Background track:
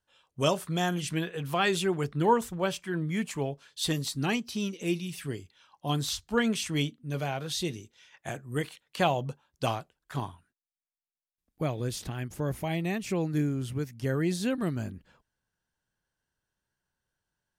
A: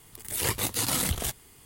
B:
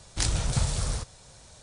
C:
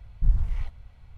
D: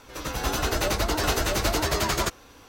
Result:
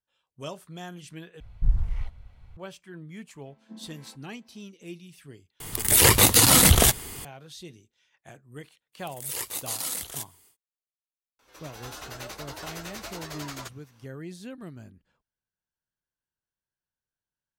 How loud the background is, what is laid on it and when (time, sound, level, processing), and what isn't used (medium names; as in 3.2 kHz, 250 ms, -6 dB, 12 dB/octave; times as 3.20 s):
background track -11.5 dB
1.40 s: replace with C -1 dB
3.46 s: add C -8.5 dB + vocoder on a held chord minor triad, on A3
5.60 s: replace with A -3 dB + loudness maximiser +18.5 dB
8.92 s: add A -8.5 dB, fades 0.10 s + tone controls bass -13 dB, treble +6 dB
11.39 s: add D -12.5 dB + bass shelf 320 Hz -11.5 dB
not used: B